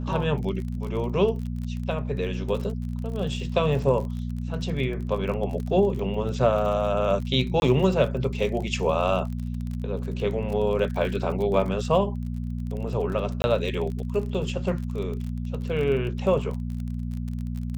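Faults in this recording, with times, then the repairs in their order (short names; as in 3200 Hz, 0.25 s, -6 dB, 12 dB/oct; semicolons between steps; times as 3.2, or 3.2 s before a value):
crackle 35/s -32 dBFS
hum 60 Hz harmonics 4 -30 dBFS
7.6–7.62 gap 21 ms
13.42–13.44 gap 21 ms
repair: de-click; de-hum 60 Hz, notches 4; interpolate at 7.6, 21 ms; interpolate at 13.42, 21 ms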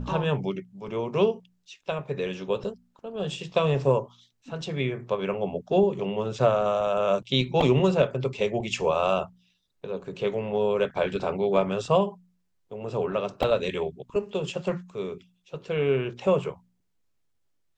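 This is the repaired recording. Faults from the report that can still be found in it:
none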